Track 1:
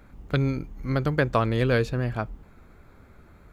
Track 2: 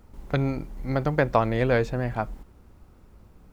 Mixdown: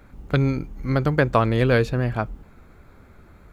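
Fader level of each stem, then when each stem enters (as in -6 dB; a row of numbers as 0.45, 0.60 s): +2.5, -11.0 dB; 0.00, 0.00 s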